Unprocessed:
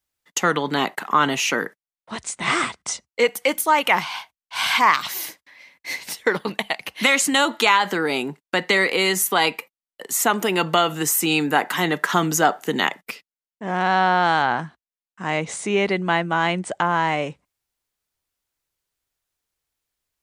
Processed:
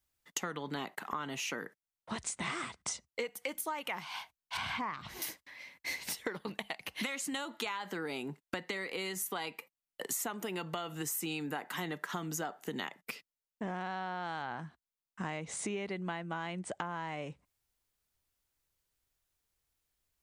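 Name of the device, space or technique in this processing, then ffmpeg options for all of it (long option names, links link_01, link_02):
ASMR close-microphone chain: -filter_complex "[0:a]asettb=1/sr,asplit=3[link_01][link_02][link_03];[link_01]atrim=end=4.574[link_04];[link_02]atrim=start=4.57:end=5.22,asetpts=PTS-STARTPTS,afade=type=in:duration=0.004:curve=qsin,afade=type=out:start_time=0.646:duration=0.004:curve=qsin,aemphasis=mode=reproduction:type=riaa[link_05];[link_03]atrim=start=5.216[link_06];[link_04][link_05]acrossfade=duration=0.004:curve1=hsin:curve2=qsin[link_07];[link_07][link_06]acrossfade=duration=0.004:curve1=qsin:curve2=hsin,lowshelf=frequency=140:gain=8,acompressor=threshold=-32dB:ratio=10,highshelf=frequency=11000:gain=3,volume=-3dB"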